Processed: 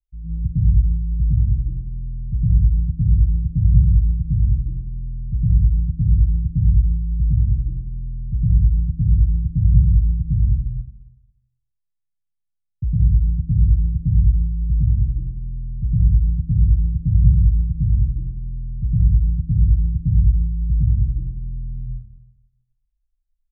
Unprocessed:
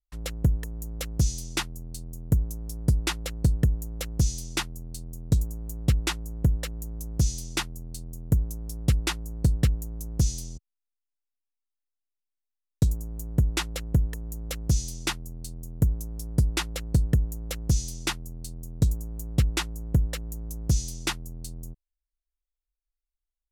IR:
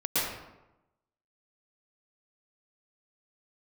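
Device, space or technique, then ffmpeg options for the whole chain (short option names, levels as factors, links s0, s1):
club heard from the street: -filter_complex "[0:a]alimiter=limit=0.106:level=0:latency=1,lowpass=f=150:w=0.5412,lowpass=f=150:w=1.3066[s0];[1:a]atrim=start_sample=2205[s1];[s0][s1]afir=irnorm=-1:irlink=0,volume=1.78"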